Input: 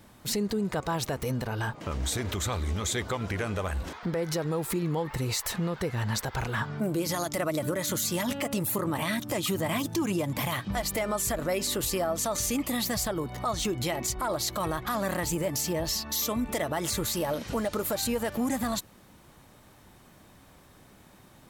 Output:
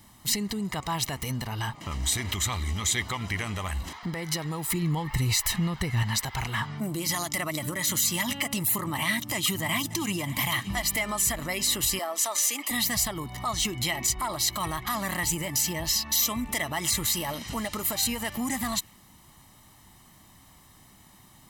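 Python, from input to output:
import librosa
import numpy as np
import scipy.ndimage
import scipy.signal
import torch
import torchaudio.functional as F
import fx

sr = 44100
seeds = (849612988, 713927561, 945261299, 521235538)

y = fx.low_shelf(x, sr, hz=140.0, db=10.5, at=(4.74, 6.03))
y = fx.echo_throw(y, sr, start_s=9.33, length_s=0.96, ms=570, feedback_pct=35, wet_db=-16.5)
y = fx.highpass(y, sr, hz=350.0, slope=24, at=(11.99, 12.71))
y = fx.high_shelf(y, sr, hz=3100.0, db=8.5)
y = y + 0.58 * np.pad(y, (int(1.0 * sr / 1000.0), 0))[:len(y)]
y = fx.dynamic_eq(y, sr, hz=2400.0, q=1.4, threshold_db=-44.0, ratio=4.0, max_db=6)
y = y * 10.0 ** (-3.5 / 20.0)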